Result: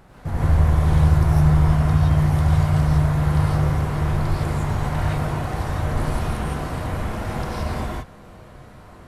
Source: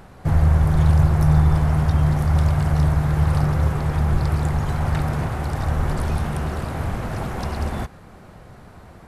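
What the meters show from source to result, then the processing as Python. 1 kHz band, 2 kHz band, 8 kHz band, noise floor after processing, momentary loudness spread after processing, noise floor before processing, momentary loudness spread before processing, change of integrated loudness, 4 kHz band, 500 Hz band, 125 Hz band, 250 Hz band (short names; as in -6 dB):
+0.5 dB, +0.5 dB, +0.5 dB, -44 dBFS, 10 LU, -44 dBFS, 10 LU, 0.0 dB, +1.5 dB, +0.5 dB, 0.0 dB, +0.5 dB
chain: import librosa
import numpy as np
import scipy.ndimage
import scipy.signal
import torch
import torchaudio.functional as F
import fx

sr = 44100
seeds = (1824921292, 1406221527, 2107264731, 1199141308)

y = fx.rev_gated(x, sr, seeds[0], gate_ms=190, shape='rising', drr_db=-6.5)
y = F.gain(torch.from_numpy(y), -6.5).numpy()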